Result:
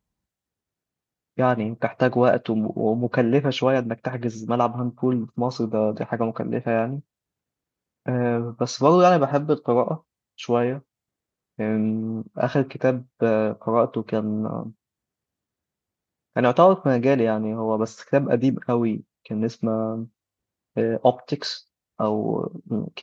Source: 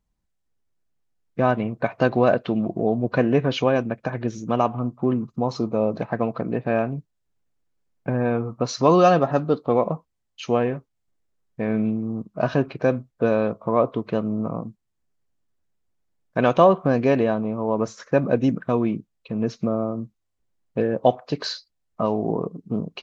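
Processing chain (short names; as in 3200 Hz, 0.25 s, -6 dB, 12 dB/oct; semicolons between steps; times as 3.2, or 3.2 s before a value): HPF 67 Hz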